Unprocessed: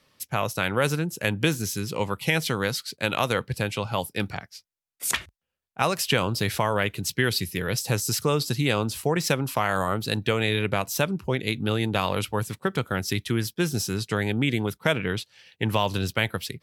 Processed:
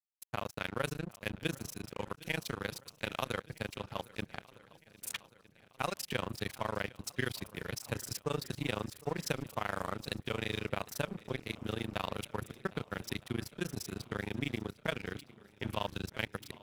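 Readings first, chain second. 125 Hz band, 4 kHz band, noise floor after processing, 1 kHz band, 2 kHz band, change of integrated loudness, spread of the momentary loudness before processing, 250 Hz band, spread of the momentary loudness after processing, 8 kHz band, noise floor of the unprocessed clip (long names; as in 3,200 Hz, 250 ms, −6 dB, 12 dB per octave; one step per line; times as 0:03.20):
−14.0 dB, −13.0 dB, −65 dBFS, −12.5 dB, −12.0 dB, −13.0 dB, 5 LU, −12.5 dB, 6 LU, −14.5 dB, −80 dBFS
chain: amplitude modulation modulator 26 Hz, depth 85%
dead-zone distortion −37 dBFS
feedback echo with a long and a short gap by turns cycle 1,261 ms, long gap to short 1.5 to 1, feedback 52%, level −21.5 dB
level −7 dB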